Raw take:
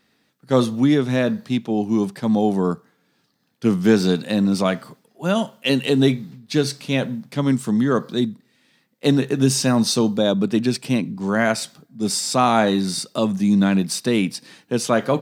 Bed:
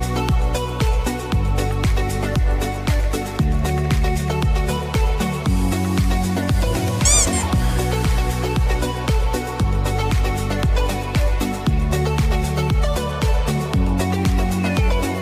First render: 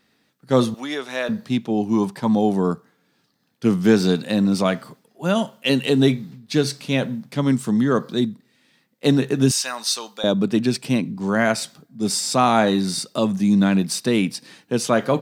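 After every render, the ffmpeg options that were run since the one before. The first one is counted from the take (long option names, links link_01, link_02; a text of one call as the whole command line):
ffmpeg -i in.wav -filter_complex "[0:a]asettb=1/sr,asplit=3[link_01][link_02][link_03];[link_01]atrim=end=0.744[link_04];[link_02]atrim=start=0.74:end=1.29,asetpts=PTS-STARTPTS,afade=type=in:duration=0.004:curve=qsin,afade=type=out:start_time=0.546:duration=0.004:curve=qsin,highpass=650[link_05];[link_03]atrim=start=1.286[link_06];[link_04][link_05]acrossfade=duration=0.004:curve1=hsin:curve2=qsin[link_07];[link_07][link_06]acrossfade=duration=0.004:curve1=qsin:curve2=hsin,asettb=1/sr,asplit=3[link_08][link_09][link_10];[link_08]atrim=end=1.934[link_11];[link_09]atrim=start=1.93:end=2.33,asetpts=PTS-STARTPTS,afade=type=in:duration=0.004:curve=qsin,afade=type=out:start_time=0.396:duration=0.004:curve=qsin,equalizer=frequency=940:width=5:gain=11[link_12];[link_10]atrim=start=2.326[link_13];[link_11][link_12]acrossfade=duration=0.004:curve1=hsin:curve2=qsin[link_14];[link_14][link_13]acrossfade=duration=0.004:curve1=qsin:curve2=hsin,asettb=1/sr,asplit=3[link_15][link_16][link_17];[link_15]atrim=end=9.514[link_18];[link_16]atrim=start=9.51:end=10.24,asetpts=PTS-STARTPTS,afade=type=in:duration=0.004:curve=qsin,afade=type=out:start_time=0.726:duration=0.004:curve=qsin,highpass=1100[link_19];[link_17]atrim=start=10.236[link_20];[link_18][link_19]acrossfade=duration=0.004:curve1=hsin:curve2=qsin[link_21];[link_21][link_20]acrossfade=duration=0.004:curve1=qsin:curve2=hsin" out.wav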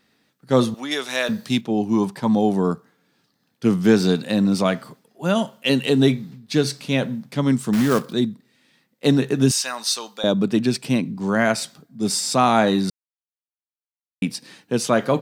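ffmpeg -i in.wav -filter_complex "[0:a]asettb=1/sr,asplit=3[link_01][link_02][link_03];[link_01]atrim=end=0.914[link_04];[link_02]atrim=start=0.91:end=1.61,asetpts=PTS-STARTPTS,afade=type=in:duration=0.004:curve=qsin,afade=type=out:start_time=0.696:duration=0.004:curve=qsin,highshelf=frequency=2600:gain=10.5[link_05];[link_03]atrim=start=1.606[link_06];[link_04][link_05]acrossfade=duration=0.004:curve1=hsin:curve2=qsin[link_07];[link_07][link_06]acrossfade=duration=0.004:curve1=qsin:curve2=hsin,asettb=1/sr,asplit=3[link_08][link_09][link_10];[link_08]atrim=end=7.734[link_11];[link_09]atrim=start=7.73:end=8.13,asetpts=PTS-STARTPTS,afade=type=in:duration=0.004:curve=qsin,afade=type=out:start_time=0.396:duration=0.004:curve=qsin,acrusher=bits=3:mode=log:mix=0:aa=0.000001[link_12];[link_10]atrim=start=8.126[link_13];[link_11][link_12]acrossfade=duration=0.004:curve1=hsin:curve2=qsin[link_14];[link_14][link_13]acrossfade=duration=0.004:curve1=qsin:curve2=hsin,asplit=3[link_15][link_16][link_17];[link_15]atrim=end=12.9,asetpts=PTS-STARTPTS,afade=type=out:start_time=12.896:duration=0.004:curve=hsin[link_18];[link_16]atrim=start=12.9:end=14.22,asetpts=PTS-STARTPTS,volume=0[link_19];[link_17]atrim=start=14.22,asetpts=PTS-STARTPTS,afade=type=in:duration=0.004:curve=hsin[link_20];[link_18][link_19][link_20]concat=n=3:v=0:a=1" out.wav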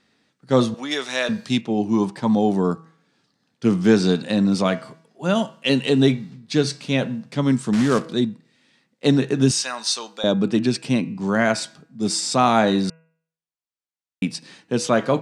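ffmpeg -i in.wav -af "lowpass=frequency=8900:width=0.5412,lowpass=frequency=8900:width=1.3066,bandreject=frequency=162.2:width_type=h:width=4,bandreject=frequency=324.4:width_type=h:width=4,bandreject=frequency=486.6:width_type=h:width=4,bandreject=frequency=648.8:width_type=h:width=4,bandreject=frequency=811:width_type=h:width=4,bandreject=frequency=973.2:width_type=h:width=4,bandreject=frequency=1135.4:width_type=h:width=4,bandreject=frequency=1297.6:width_type=h:width=4,bandreject=frequency=1459.8:width_type=h:width=4,bandreject=frequency=1622:width_type=h:width=4,bandreject=frequency=1784.2:width_type=h:width=4,bandreject=frequency=1946.4:width_type=h:width=4,bandreject=frequency=2108.6:width_type=h:width=4,bandreject=frequency=2270.8:width_type=h:width=4,bandreject=frequency=2433:width_type=h:width=4,bandreject=frequency=2595.2:width_type=h:width=4,bandreject=frequency=2757.4:width_type=h:width=4,bandreject=frequency=2919.6:width_type=h:width=4" out.wav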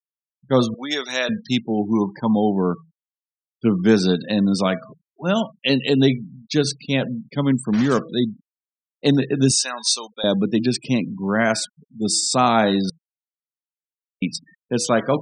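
ffmpeg -i in.wav -af "afftfilt=real='re*gte(hypot(re,im),0.0251)':imag='im*gte(hypot(re,im),0.0251)':win_size=1024:overlap=0.75,highshelf=frequency=6400:gain=8" out.wav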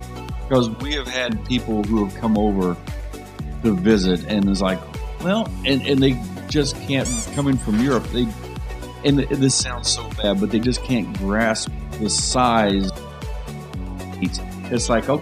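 ffmpeg -i in.wav -i bed.wav -filter_complex "[1:a]volume=-11.5dB[link_01];[0:a][link_01]amix=inputs=2:normalize=0" out.wav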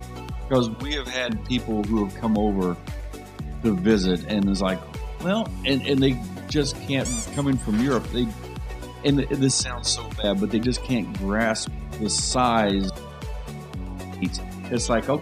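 ffmpeg -i in.wav -af "volume=-3.5dB" out.wav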